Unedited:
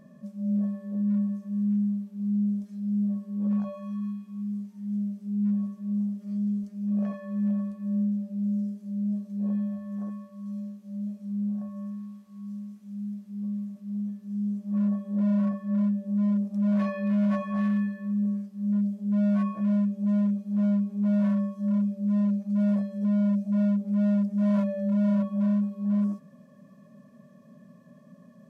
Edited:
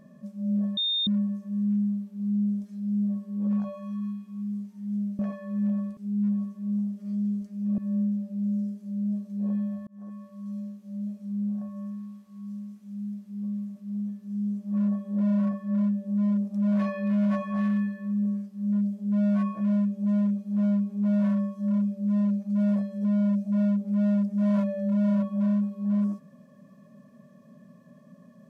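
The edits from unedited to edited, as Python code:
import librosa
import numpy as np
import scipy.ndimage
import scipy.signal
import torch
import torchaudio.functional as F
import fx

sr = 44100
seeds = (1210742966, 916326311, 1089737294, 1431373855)

y = fx.edit(x, sr, fx.bleep(start_s=0.77, length_s=0.3, hz=3650.0, db=-23.5),
    fx.move(start_s=7.0, length_s=0.78, to_s=5.19),
    fx.fade_in_span(start_s=9.87, length_s=0.41), tone=tone)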